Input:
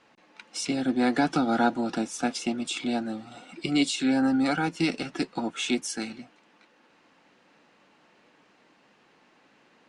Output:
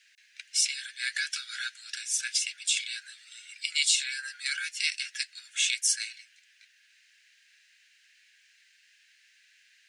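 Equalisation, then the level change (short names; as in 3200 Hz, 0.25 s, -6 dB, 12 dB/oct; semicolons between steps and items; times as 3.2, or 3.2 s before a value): Chebyshev high-pass 1600 Hz, order 6; high shelf 5100 Hz +11.5 dB; +1.5 dB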